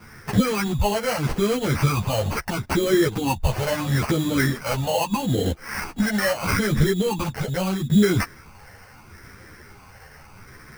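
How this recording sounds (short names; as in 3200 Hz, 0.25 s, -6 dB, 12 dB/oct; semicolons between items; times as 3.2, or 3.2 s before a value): phasing stages 6, 0.77 Hz, lowest notch 310–1000 Hz; aliases and images of a low sample rate 3600 Hz, jitter 0%; a shimmering, thickened sound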